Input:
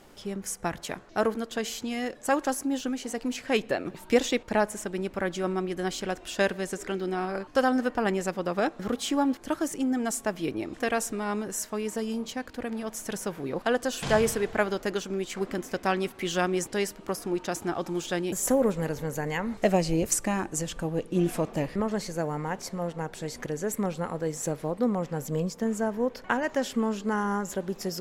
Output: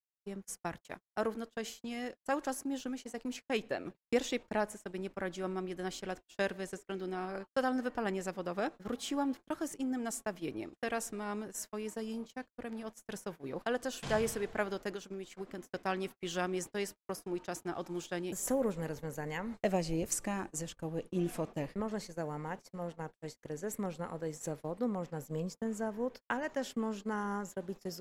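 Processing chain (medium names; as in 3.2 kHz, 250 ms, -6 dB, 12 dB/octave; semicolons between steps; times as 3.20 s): gate -34 dBFS, range -58 dB; 14.94–15.72 s: compression, threshold -30 dBFS, peak gain reduction 6.5 dB; trim -8.5 dB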